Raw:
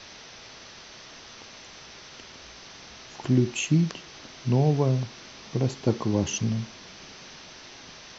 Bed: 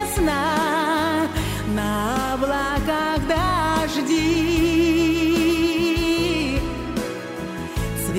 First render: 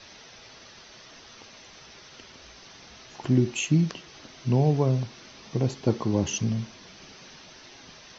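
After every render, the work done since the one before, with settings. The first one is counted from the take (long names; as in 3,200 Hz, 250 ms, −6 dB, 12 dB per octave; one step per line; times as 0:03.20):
broadband denoise 6 dB, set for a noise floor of −47 dBFS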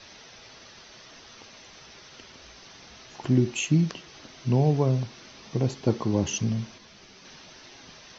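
0:06.78–0:07.25: string-ensemble chorus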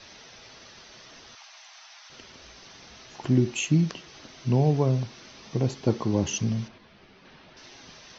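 0:01.35–0:02.10: Butterworth high-pass 660 Hz 72 dB per octave
0:06.68–0:07.57: high-frequency loss of the air 270 metres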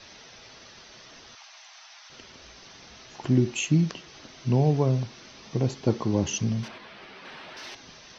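0:06.63–0:07.75: mid-hump overdrive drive 18 dB, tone 3,700 Hz, clips at −27.5 dBFS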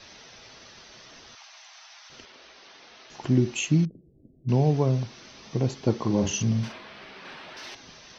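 0:02.25–0:03.10: three-way crossover with the lows and the highs turned down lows −18 dB, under 270 Hz, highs −17 dB, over 5,400 Hz
0:03.85–0:04.49: Gaussian smoothing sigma 24 samples
0:05.99–0:07.34: double-tracking delay 44 ms −5.5 dB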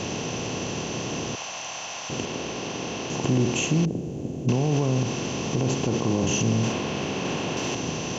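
compressor on every frequency bin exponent 0.4
brickwall limiter −13.5 dBFS, peak gain reduction 8 dB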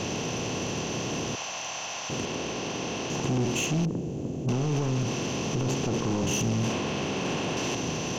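soft clipping −21.5 dBFS, distortion −12 dB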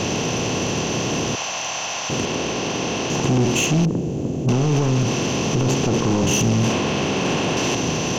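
level +8.5 dB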